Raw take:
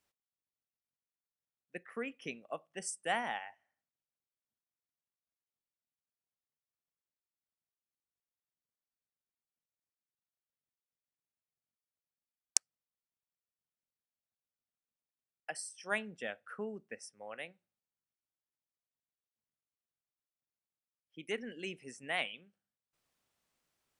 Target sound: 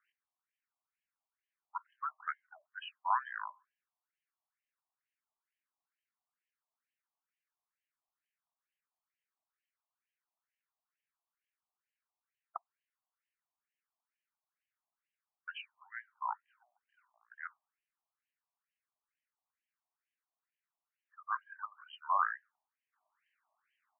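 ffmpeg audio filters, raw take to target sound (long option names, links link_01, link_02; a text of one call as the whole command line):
ffmpeg -i in.wav -af "asetrate=24046,aresample=44100,atempo=1.83401,afftfilt=real='re*between(b*sr/1024,840*pow(2300/840,0.5+0.5*sin(2*PI*2.2*pts/sr))/1.41,840*pow(2300/840,0.5+0.5*sin(2*PI*2.2*pts/sr))*1.41)':imag='im*between(b*sr/1024,840*pow(2300/840,0.5+0.5*sin(2*PI*2.2*pts/sr))/1.41,840*pow(2300/840,0.5+0.5*sin(2*PI*2.2*pts/sr))*1.41)':win_size=1024:overlap=0.75,volume=9dB" out.wav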